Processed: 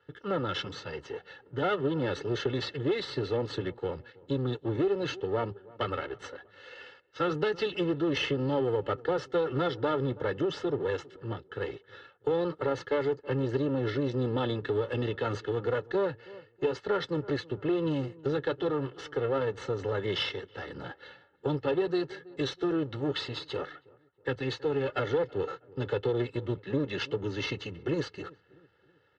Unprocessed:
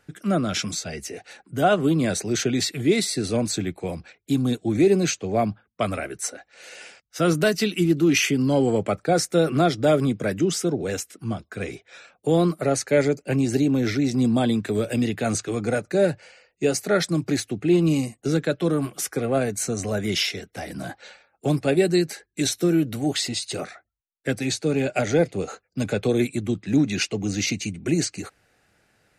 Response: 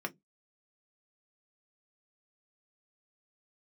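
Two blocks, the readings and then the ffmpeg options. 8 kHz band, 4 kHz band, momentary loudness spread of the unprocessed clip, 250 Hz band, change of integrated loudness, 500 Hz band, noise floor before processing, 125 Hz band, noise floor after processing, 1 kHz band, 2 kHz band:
under -25 dB, -8.5 dB, 13 LU, -11.0 dB, -8.0 dB, -6.0 dB, -71 dBFS, -8.5 dB, -64 dBFS, -6.5 dB, -7.5 dB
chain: -filter_complex "[0:a]aeval=exprs='if(lt(val(0),0),0.251*val(0),val(0))':c=same,asuperstop=centerf=2400:order=8:qfactor=6.3,highpass=120,equalizer=f=160:t=q:w=4:g=-3,equalizer=f=330:t=q:w=4:g=-6,equalizer=f=780:t=q:w=4:g=-9,equalizer=f=2.2k:t=q:w=4:g=-7,lowpass=f=3.4k:w=0.5412,lowpass=f=3.4k:w=1.3066,aecho=1:1:2.3:0.77,asplit=2[a][b];[b]adelay=323,lowpass=f=1.3k:p=1,volume=-23.5dB,asplit=2[c][d];[d]adelay=323,lowpass=f=1.3k:p=1,volume=0.46,asplit=2[e][f];[f]adelay=323,lowpass=f=1.3k:p=1,volume=0.46[g];[a][c][e][g]amix=inputs=4:normalize=0,asplit=2[h][i];[i]asoftclip=type=tanh:threshold=-23dB,volume=-10.5dB[j];[h][j]amix=inputs=2:normalize=0,acompressor=threshold=-22dB:ratio=6,volume=-2dB"

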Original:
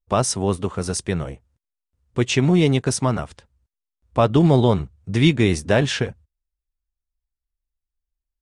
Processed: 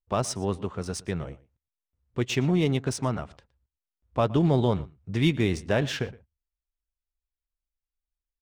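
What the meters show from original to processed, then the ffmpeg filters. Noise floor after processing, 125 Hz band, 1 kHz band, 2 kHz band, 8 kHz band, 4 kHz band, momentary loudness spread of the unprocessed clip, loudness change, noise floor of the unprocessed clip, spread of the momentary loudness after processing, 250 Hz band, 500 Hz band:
under -85 dBFS, -7.0 dB, -7.0 dB, -7.0 dB, -10.0 dB, -7.5 dB, 12 LU, -7.0 dB, under -85 dBFS, 12 LU, -7.0 dB, -7.0 dB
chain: -filter_complex "[0:a]adynamicsmooth=sensitivity=3.5:basefreq=5.3k,asplit=2[a][b];[b]adelay=116.6,volume=-21dB,highshelf=f=4k:g=-2.62[c];[a][c]amix=inputs=2:normalize=0,volume=-7dB"

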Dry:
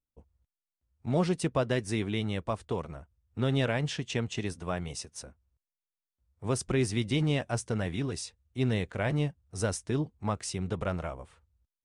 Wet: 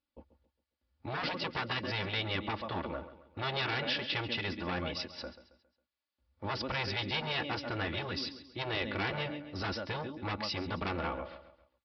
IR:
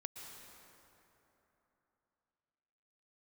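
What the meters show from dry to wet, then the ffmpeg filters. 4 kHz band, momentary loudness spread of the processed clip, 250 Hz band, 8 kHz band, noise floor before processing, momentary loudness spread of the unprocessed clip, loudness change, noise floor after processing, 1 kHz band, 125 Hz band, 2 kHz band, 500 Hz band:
+4.5 dB, 9 LU, -8.0 dB, -19.5 dB, under -85 dBFS, 12 LU, -3.5 dB, under -85 dBFS, +1.5 dB, -9.5 dB, +3.0 dB, -6.5 dB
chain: -af "aecho=1:1:3.5:0.68,aecho=1:1:136|272|408|544:0.178|0.0694|0.027|0.0105,aresample=11025,asoftclip=type=tanh:threshold=-27.5dB,aresample=44100,highpass=f=200:p=1,afftfilt=real='re*lt(hypot(re,im),0.0708)':imag='im*lt(hypot(re,im),0.0708)':win_size=1024:overlap=0.75,volume=6dB"

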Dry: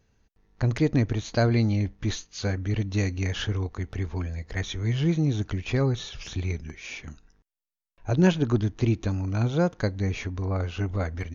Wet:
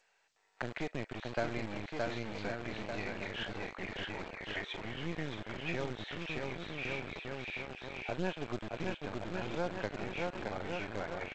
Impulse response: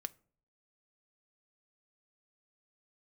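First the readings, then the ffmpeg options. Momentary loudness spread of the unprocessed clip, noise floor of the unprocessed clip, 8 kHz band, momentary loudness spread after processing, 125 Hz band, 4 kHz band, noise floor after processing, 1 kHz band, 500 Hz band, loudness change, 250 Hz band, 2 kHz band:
10 LU, under -85 dBFS, n/a, 4 LU, -20.0 dB, -7.0 dB, -72 dBFS, -4.0 dB, -8.5 dB, -12.5 dB, -14.5 dB, -3.5 dB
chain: -filter_complex "[0:a]highshelf=f=2.5k:g=-9.5,asplit=2[a][b];[b]aecho=0:1:620|1116|1513|1830|2084:0.631|0.398|0.251|0.158|0.1[c];[a][c]amix=inputs=2:normalize=0,acompressor=threshold=-38dB:ratio=2.5,highpass=270,equalizer=f=280:t=q:w=4:g=-7,equalizer=f=470:t=q:w=4:g=-3,equalizer=f=1.1k:t=q:w=4:g=-6,equalizer=f=2.5k:t=q:w=4:g=4,lowpass=f=3.8k:w=0.5412,lowpass=f=3.8k:w=1.3066,acrossover=split=570|910[d][e][f];[d]acrusher=bits=5:dc=4:mix=0:aa=0.000001[g];[f]asplit=2[h][i];[i]adelay=38,volume=-10dB[j];[h][j]amix=inputs=2:normalize=0[k];[g][e][k]amix=inputs=3:normalize=0,volume=6.5dB" -ar 16000 -c:a g722

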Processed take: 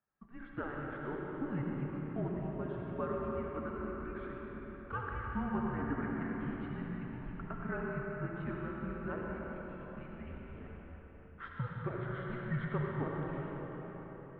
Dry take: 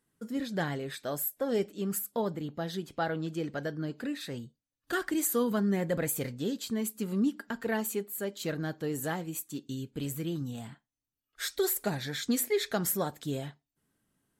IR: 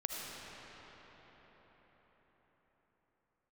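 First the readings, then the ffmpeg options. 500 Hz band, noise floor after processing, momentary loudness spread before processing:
-8.0 dB, -52 dBFS, 9 LU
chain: -filter_complex "[1:a]atrim=start_sample=2205[a];[0:a][a]afir=irnorm=-1:irlink=0,highpass=f=390:t=q:w=0.5412,highpass=f=390:t=q:w=1.307,lowpass=f=2.4k:t=q:w=0.5176,lowpass=f=2.4k:t=q:w=0.7071,lowpass=f=2.4k:t=q:w=1.932,afreqshift=-260,volume=-4.5dB"

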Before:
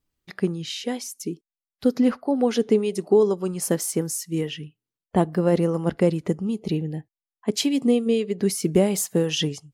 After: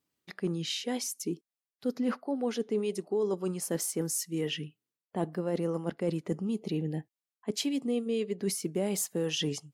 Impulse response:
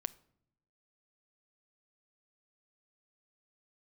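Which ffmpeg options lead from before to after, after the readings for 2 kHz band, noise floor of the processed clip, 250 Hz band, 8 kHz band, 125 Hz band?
-6.5 dB, under -85 dBFS, -9.5 dB, -5.0 dB, -9.5 dB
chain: -af "highpass=160,areverse,acompressor=threshold=-29dB:ratio=4,areverse"

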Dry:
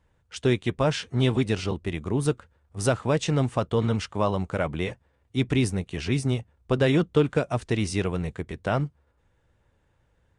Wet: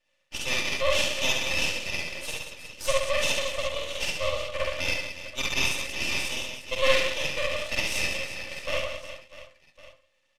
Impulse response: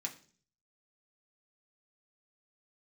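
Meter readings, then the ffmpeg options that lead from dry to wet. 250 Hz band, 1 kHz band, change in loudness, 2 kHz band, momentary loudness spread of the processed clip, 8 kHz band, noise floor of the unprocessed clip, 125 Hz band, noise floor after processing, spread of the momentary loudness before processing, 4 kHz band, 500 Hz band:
-17.0 dB, -2.5 dB, -1.0 dB, +7.0 dB, 10 LU, +6.0 dB, -68 dBFS, -18.0 dB, -70 dBFS, 8 LU, +8.0 dB, -3.5 dB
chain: -filter_complex "[0:a]lowshelf=f=410:t=q:w=1.5:g=-12.5,aecho=1:1:3.4:0.96,asplit=2[a][b];[b]aecho=0:1:70|182|361.2|647.9|1107:0.631|0.398|0.251|0.158|0.1[c];[a][c]amix=inputs=2:normalize=0,aexciter=amount=14.1:drive=3.5:freq=2.2k,asplit=3[d][e][f];[d]bandpass=f=530:t=q:w=8,volume=0dB[g];[e]bandpass=f=1.84k:t=q:w=8,volume=-6dB[h];[f]bandpass=f=2.48k:t=q:w=8,volume=-9dB[i];[g][h][i]amix=inputs=3:normalize=0,asplit=2[j][k];[1:a]atrim=start_sample=2205,adelay=48[l];[k][l]afir=irnorm=-1:irlink=0,volume=1.5dB[m];[j][m]amix=inputs=2:normalize=0,aeval=exprs='max(val(0),0)':c=same,aresample=32000,aresample=44100"

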